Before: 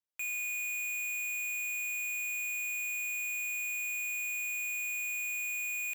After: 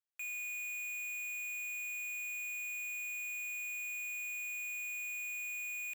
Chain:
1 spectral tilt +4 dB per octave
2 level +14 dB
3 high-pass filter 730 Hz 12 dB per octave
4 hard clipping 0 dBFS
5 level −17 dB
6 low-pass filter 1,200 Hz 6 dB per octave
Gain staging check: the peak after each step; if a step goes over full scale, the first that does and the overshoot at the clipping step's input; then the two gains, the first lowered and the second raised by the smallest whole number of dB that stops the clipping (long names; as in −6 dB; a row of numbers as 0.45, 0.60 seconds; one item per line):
−18.0, −4.0, −3.5, −3.5, −20.5, −36.5 dBFS
no step passes full scale